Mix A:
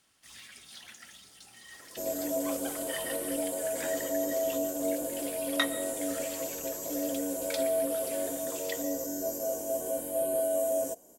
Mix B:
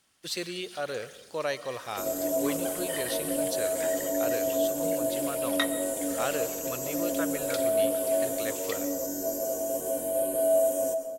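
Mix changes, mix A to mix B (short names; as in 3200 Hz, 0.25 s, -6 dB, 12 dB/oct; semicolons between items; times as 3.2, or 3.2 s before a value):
speech: unmuted; second sound: send on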